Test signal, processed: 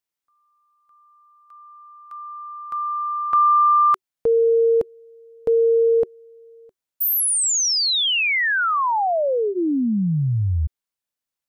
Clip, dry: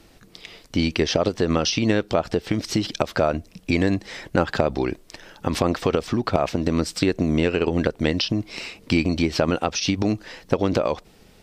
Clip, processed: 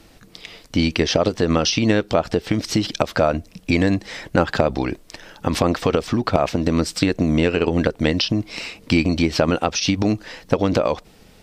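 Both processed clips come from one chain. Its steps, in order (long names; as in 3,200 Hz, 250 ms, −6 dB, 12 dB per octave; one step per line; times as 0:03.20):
notch filter 380 Hz, Q 12
level +3 dB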